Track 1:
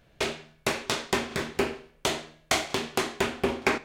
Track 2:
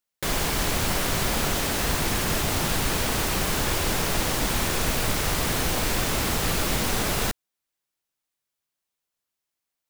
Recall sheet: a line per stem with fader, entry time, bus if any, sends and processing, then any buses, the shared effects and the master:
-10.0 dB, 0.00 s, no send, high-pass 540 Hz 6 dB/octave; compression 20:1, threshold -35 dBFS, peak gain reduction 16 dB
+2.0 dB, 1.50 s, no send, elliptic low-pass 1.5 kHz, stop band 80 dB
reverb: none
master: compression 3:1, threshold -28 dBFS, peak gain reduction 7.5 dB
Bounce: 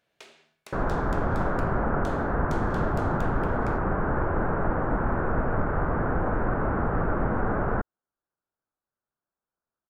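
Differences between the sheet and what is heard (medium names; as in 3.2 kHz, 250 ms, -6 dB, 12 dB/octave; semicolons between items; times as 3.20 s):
stem 2: entry 1.50 s -> 0.50 s; master: missing compression 3:1, threshold -28 dBFS, peak gain reduction 7.5 dB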